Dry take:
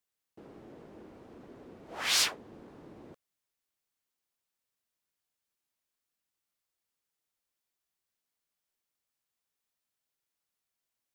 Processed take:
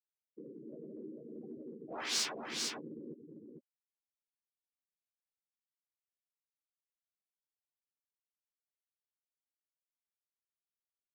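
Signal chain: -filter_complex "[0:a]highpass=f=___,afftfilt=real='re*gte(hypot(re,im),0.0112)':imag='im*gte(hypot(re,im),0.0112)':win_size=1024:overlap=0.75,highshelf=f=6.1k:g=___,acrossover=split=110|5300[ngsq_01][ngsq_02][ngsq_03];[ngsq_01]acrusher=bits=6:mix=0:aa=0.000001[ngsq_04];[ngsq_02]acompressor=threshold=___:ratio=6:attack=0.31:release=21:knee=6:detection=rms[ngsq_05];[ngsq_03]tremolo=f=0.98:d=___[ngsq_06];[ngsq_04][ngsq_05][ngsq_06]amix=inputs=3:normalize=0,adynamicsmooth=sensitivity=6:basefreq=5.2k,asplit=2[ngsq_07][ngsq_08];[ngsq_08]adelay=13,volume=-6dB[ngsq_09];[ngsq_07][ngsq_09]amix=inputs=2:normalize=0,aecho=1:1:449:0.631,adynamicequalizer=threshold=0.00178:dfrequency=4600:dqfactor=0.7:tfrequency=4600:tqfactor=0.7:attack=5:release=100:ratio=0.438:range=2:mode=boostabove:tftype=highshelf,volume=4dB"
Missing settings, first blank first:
59, -11, -42dB, 0.78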